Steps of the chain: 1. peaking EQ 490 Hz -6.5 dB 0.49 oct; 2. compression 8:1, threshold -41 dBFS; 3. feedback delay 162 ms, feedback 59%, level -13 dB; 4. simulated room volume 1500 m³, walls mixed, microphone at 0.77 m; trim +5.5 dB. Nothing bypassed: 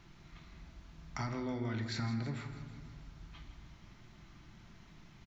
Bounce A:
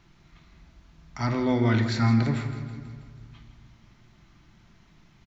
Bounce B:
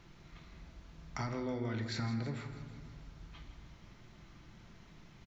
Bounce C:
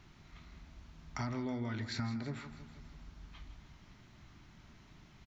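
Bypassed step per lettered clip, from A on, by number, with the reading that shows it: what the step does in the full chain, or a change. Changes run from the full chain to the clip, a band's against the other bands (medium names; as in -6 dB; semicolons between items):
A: 2, mean gain reduction 4.5 dB; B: 1, 500 Hz band +2.5 dB; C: 4, echo-to-direct -5.5 dB to -11.0 dB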